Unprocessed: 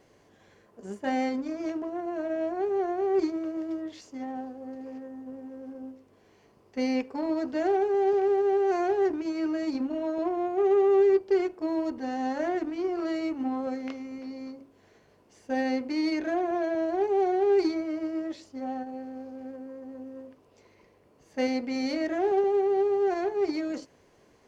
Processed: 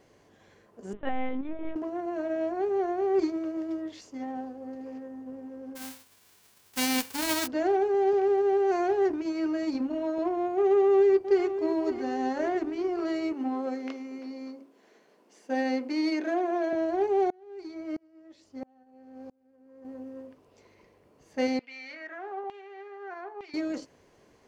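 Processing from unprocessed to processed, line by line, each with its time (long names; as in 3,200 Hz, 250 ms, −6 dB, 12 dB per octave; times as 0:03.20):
0:00.93–0:01.76: linear-prediction vocoder at 8 kHz pitch kept
0:05.75–0:07.46: spectral envelope flattened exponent 0.1
0:10.68–0:11.46: delay throw 560 ms, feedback 50%, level −11 dB
0:13.33–0:16.73: high-pass filter 210 Hz 24 dB per octave
0:17.30–0:19.85: tremolo with a ramp in dB swelling 1.5 Hz, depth 33 dB
0:21.59–0:23.54: auto-filter band-pass saw down 1.1 Hz 950–3,000 Hz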